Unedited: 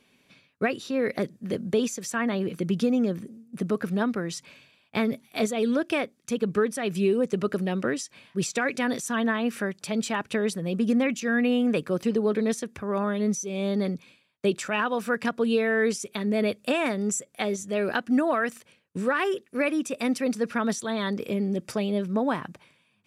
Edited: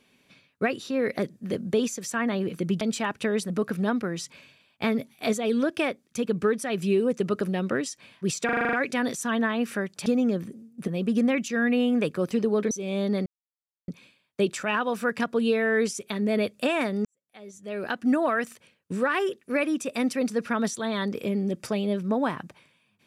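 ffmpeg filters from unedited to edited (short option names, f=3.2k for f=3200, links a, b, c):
-filter_complex "[0:a]asplit=15[a][b][c][d][e][f][g][h][i][j][k][l][m][n][o];[a]atrim=end=2.812[p];[b]atrim=start=9.908:end=10.602[q];[c]atrim=start=3.628:end=8.622[r];[d]atrim=start=8.578:end=8.622[s];[e]atrim=start=8.578:end=8.622[t];[f]atrim=start=8.578:end=8.622[u];[g]atrim=start=8.578:end=8.622[v];[h]atrim=start=8.578:end=8.622[w];[i]atrim=start=8.578:end=8.622[x];[j]atrim=start=8.578:end=9.912[y];[k]atrim=start=2.808:end=3.632[z];[l]atrim=start=10.598:end=12.432[aa];[m]atrim=start=13.378:end=13.93,asetpts=PTS-STARTPTS,afade=t=out:st=0.548:d=0.004:c=hsin,apad=pad_dur=0.62[ab];[n]atrim=start=13.93:end=17.1,asetpts=PTS-STARTPTS,afade=t=in:d=0.004:c=hsin,afade=t=out:st=3.166:d=0.004:c=hsin[ac];[o]atrim=start=17.1,asetpts=PTS-STARTPTS,afade=t=in:d=1.02:c=qua[ad];[p][q]acrossfade=d=0.004:c1=hsin:c2=hsin[ae];[ae][r]acrossfade=d=0.004:c1=hsin:c2=hsin[af];[af][s]acrossfade=d=0.004:c1=hsin:c2=hsin[ag];[ag][t]acrossfade=d=0.004:c1=hsin:c2=hsin[ah];[ah][u]acrossfade=d=0.004:c1=hsin:c2=hsin[ai];[ai][v]acrossfade=d=0.004:c1=hsin:c2=hsin[aj];[aj][w]acrossfade=d=0.004:c1=hsin:c2=hsin[ak];[ak][x]acrossfade=d=0.004:c1=hsin:c2=hsin[al];[al][y]acrossfade=d=0.004:c1=hsin:c2=hsin[am];[am][z]acrossfade=d=0.004:c1=hsin:c2=hsin[an];[an][aa]acrossfade=d=0.004:c1=hsin:c2=hsin[ao];[ab][ac][ad]concat=n=3:v=0:a=1[ap];[ao][ap]acrossfade=d=0.004:c1=hsin:c2=hsin"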